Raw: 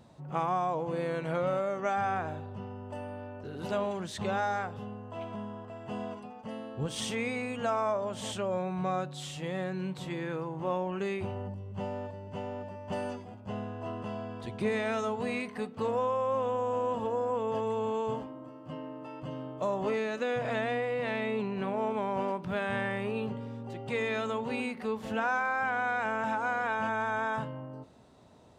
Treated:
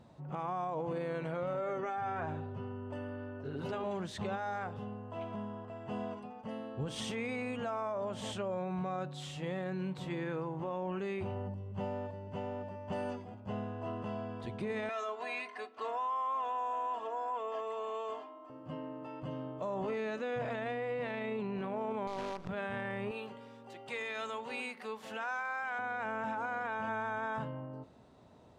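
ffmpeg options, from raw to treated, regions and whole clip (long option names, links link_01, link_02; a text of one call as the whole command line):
ffmpeg -i in.wav -filter_complex "[0:a]asettb=1/sr,asplit=3[link_01][link_02][link_03];[link_01]atrim=end=1.544[link_04];[link_02]atrim=start=1.54:end=3.84,asetpts=PTS-STARTPTS,afade=type=in:duration=0.004:curve=qsin,afade=type=out:start_time=2.296:duration=0.004:curve=qsin,highshelf=frequency=5700:gain=-5.5,aecho=1:1:7.4:0.63,atrim=end_sample=101430[link_05];[link_03]atrim=start=3.836[link_06];[link_04][link_05]acrossfade=duration=0.004:curve1=hsin:curve2=qsin[link_07];[link_07][link_06]acrossfade=duration=0.004:curve1=qsin:curve2=hsin,asettb=1/sr,asplit=3[link_08][link_09][link_10];[link_08]atrim=end=14.894[link_11];[link_09]atrim=start=14.89:end=18.5,asetpts=PTS-STARTPTS,afade=type=in:duration=0.004:curve=qsin,afade=type=out:start_time=3.606:duration=0.004:curve=qsin,highpass=690,lowpass=7800,aecho=1:1:2.9:0.74,atrim=end_sample=159201[link_12];[link_10]atrim=start=18.496[link_13];[link_11][link_12]acrossfade=duration=0.004:curve1=hsin:curve2=qsin[link_14];[link_14][link_13]acrossfade=duration=0.004:curve1=qsin:curve2=hsin,asettb=1/sr,asplit=3[link_15][link_16][link_17];[link_15]atrim=end=22.074[link_18];[link_16]atrim=start=22.07:end=22.49,asetpts=PTS-STARTPTS,afade=type=in:duration=0.004:curve=qsin,afade=type=out:start_time=0.416:duration=0.004:curve=qsin,acrusher=bits=6:dc=4:mix=0:aa=0.000001,acompressor=threshold=-33dB:ratio=4:attack=3.2:release=140:knee=1:detection=peak,lowpass=6400[link_19];[link_17]atrim=start=22.486[link_20];[link_18][link_19]acrossfade=duration=0.004:curve1=hsin:curve2=qsin[link_21];[link_21][link_20]acrossfade=duration=0.004:curve1=qsin:curve2=hsin,asettb=1/sr,asplit=3[link_22][link_23][link_24];[link_22]atrim=end=23.114[link_25];[link_23]atrim=start=23.11:end=25.79,asetpts=PTS-STARTPTS,afade=type=in:duration=0.004:curve=qsin,afade=type=out:start_time=2.676:duration=0.004:curve=qsin,highpass=frequency=920:poles=1,highshelf=frequency=4700:gain=7.5[link_26];[link_24]atrim=start=25.786[link_27];[link_25][link_26]acrossfade=duration=0.004:curve1=hsin:curve2=qsin[link_28];[link_28][link_27]acrossfade=duration=0.004:curve1=qsin:curve2=hsin,highshelf=frequency=5000:gain=-8.5,alimiter=level_in=3.5dB:limit=-24dB:level=0:latency=1:release=20,volume=-3.5dB,volume=-1.5dB" out.wav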